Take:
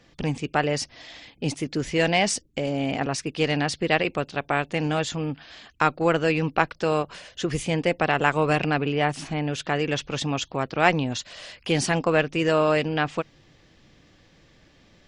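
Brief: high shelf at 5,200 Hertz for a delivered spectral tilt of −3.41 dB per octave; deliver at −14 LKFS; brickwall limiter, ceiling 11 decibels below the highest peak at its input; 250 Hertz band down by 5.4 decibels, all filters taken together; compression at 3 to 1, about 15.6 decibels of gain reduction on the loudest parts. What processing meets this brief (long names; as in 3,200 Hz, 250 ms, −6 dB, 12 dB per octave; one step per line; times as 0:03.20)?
parametric band 250 Hz −8.5 dB
high-shelf EQ 5,200 Hz +9 dB
downward compressor 3 to 1, threshold −37 dBFS
level +24.5 dB
brickwall limiter −2 dBFS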